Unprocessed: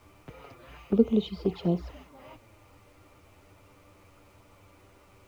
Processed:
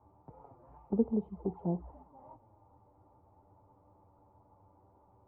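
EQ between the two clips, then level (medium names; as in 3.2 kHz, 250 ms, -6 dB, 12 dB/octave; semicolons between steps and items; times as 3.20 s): high-pass 89 Hz 6 dB/octave; four-pole ladder low-pass 940 Hz, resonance 75%; bass shelf 330 Hz +11.5 dB; -2.5 dB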